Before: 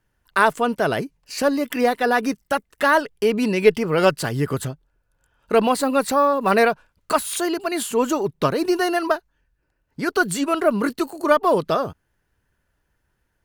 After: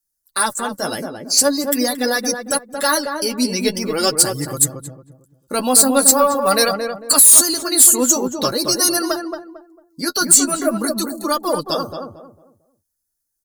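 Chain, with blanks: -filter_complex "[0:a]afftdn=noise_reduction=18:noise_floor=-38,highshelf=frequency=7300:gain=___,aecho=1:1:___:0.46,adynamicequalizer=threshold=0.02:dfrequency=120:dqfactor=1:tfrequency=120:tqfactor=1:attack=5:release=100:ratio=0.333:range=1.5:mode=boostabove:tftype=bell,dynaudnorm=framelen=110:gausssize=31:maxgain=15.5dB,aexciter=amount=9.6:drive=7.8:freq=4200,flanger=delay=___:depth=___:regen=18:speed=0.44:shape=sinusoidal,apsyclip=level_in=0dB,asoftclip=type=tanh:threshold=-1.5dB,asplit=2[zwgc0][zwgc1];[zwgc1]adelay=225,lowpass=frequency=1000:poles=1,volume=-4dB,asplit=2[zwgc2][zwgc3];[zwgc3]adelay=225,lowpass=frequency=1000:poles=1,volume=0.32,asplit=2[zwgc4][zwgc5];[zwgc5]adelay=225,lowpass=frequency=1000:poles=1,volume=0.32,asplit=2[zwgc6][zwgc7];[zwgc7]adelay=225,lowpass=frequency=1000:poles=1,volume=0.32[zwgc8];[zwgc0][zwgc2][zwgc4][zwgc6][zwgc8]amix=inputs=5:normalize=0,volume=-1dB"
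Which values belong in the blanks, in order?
6, 3.6, 5.8, 6.1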